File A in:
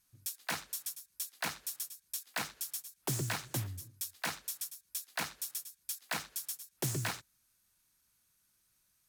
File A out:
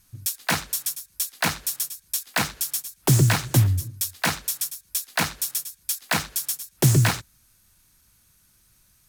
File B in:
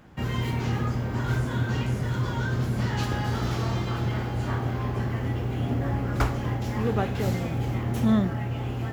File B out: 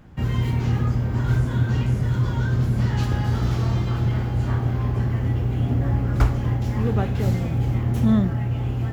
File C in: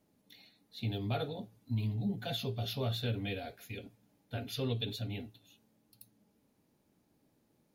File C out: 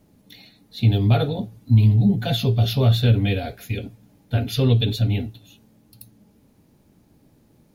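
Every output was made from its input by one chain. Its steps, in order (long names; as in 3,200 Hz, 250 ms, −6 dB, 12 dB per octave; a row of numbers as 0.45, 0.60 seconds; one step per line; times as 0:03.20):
low-shelf EQ 170 Hz +11.5 dB
normalise the peak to −6 dBFS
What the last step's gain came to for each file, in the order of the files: +13.0, −1.5, +11.5 decibels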